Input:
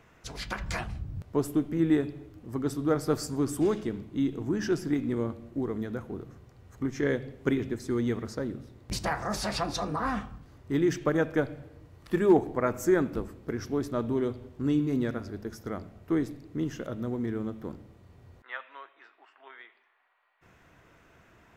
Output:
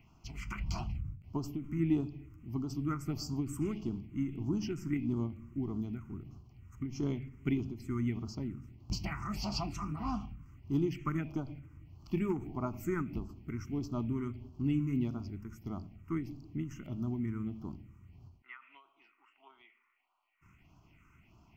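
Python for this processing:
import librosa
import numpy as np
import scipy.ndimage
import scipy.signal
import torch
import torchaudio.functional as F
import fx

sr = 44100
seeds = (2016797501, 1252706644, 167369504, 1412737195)

y = fx.phaser_stages(x, sr, stages=4, low_hz=670.0, high_hz=2000.0, hz=1.6, feedback_pct=20)
y = fx.fixed_phaser(y, sr, hz=2500.0, stages=8)
y = fx.end_taper(y, sr, db_per_s=130.0)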